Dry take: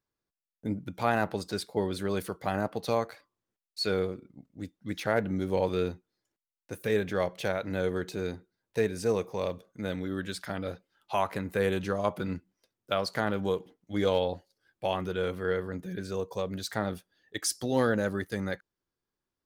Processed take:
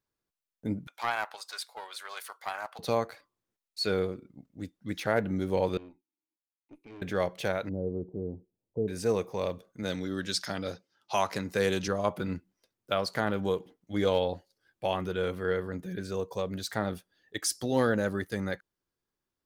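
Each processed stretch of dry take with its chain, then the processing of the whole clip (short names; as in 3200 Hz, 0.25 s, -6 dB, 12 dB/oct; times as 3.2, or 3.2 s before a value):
0.87–2.79 HPF 830 Hz 24 dB/oct + Doppler distortion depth 0.13 ms
5.77–7.02 vowel filter u + tube stage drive 43 dB, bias 0.6
7.69–8.88 Gaussian blur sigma 15 samples + mismatched tape noise reduction encoder only
9.83–11.88 HPF 89 Hz + bell 5500 Hz +14.5 dB 0.95 oct + mismatched tape noise reduction decoder only
whole clip: dry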